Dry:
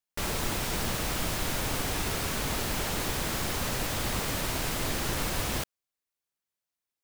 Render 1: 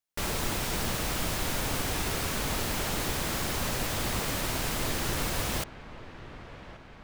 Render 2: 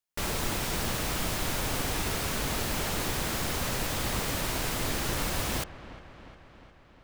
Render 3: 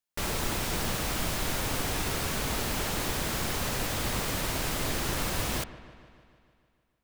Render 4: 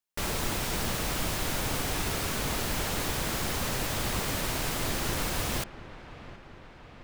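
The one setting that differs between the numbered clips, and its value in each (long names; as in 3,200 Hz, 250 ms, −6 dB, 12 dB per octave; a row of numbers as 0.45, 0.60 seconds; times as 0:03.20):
delay with a low-pass on its return, delay time: 1,129, 355, 150, 722 milliseconds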